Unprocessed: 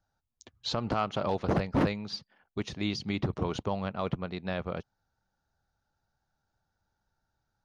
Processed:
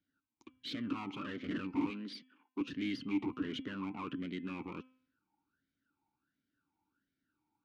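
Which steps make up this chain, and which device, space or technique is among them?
talk box (tube saturation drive 38 dB, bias 0.6; formant filter swept between two vowels i-u 1.4 Hz)
0:01.90–0:02.61: high-pass filter 200 Hz 24 dB per octave
hum removal 257.4 Hz, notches 13
level +15.5 dB

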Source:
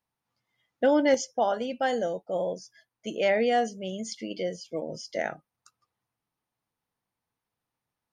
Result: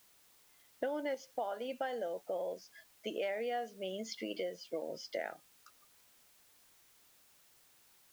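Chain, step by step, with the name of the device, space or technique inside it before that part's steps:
baby monitor (band-pass filter 340–3,700 Hz; downward compressor, threshold −37 dBFS, peak gain reduction 17.5 dB; white noise bed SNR 24 dB)
level +1.5 dB

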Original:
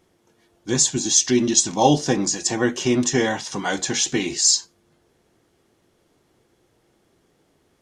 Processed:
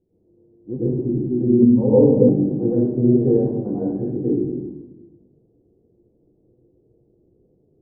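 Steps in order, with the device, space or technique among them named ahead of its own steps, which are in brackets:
next room (low-pass filter 470 Hz 24 dB per octave; convolution reverb RT60 1.1 s, pre-delay 95 ms, DRR −10 dB)
0:01.62–0:02.29: EQ curve with evenly spaced ripples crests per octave 0.95, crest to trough 17 dB
level −5.5 dB

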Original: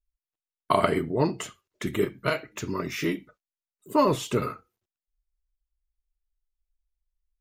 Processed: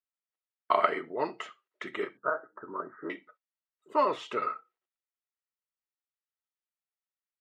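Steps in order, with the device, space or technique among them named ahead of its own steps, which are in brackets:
0:02.17–0:03.10: Butterworth low-pass 1,600 Hz 96 dB per octave
tin-can telephone (band-pass filter 540–2,900 Hz; hollow resonant body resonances 1,300/1,900 Hz, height 8 dB, ringing for 35 ms)
level −2 dB

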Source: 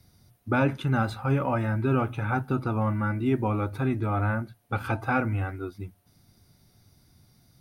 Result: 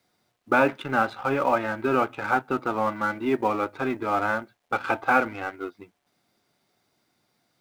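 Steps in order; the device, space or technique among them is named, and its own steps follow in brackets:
phone line with mismatched companding (band-pass filter 380–3,300 Hz; mu-law and A-law mismatch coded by A)
level +7.5 dB

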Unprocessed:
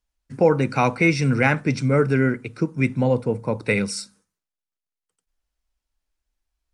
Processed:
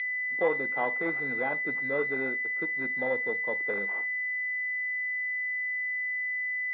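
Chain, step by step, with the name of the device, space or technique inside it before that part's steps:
toy sound module (linearly interpolated sample-rate reduction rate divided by 6×; switching amplifier with a slow clock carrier 2,000 Hz; loudspeaker in its box 520–3,900 Hz, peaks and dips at 1,600 Hz +3 dB, 2,300 Hz +6 dB, 3,400 Hz +9 dB)
level −5.5 dB

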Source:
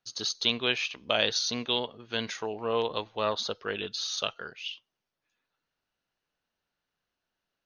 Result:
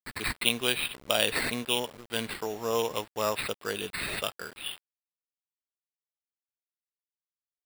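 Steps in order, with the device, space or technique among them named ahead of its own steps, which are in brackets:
early 8-bit sampler (sample-rate reduction 6,300 Hz, jitter 0%; bit reduction 8 bits)

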